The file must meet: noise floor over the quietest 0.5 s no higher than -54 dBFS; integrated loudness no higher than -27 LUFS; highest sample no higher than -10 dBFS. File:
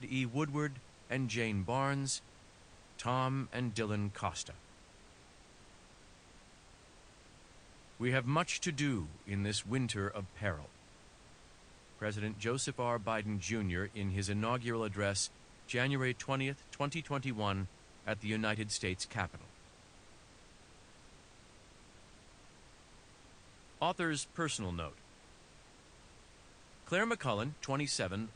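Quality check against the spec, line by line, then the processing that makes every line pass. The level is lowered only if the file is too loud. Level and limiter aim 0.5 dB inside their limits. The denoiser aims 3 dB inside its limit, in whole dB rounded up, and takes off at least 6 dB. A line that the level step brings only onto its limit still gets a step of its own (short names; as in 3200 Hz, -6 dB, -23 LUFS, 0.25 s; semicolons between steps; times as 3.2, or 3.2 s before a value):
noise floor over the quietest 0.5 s -60 dBFS: OK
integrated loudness -36.5 LUFS: OK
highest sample -16.0 dBFS: OK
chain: none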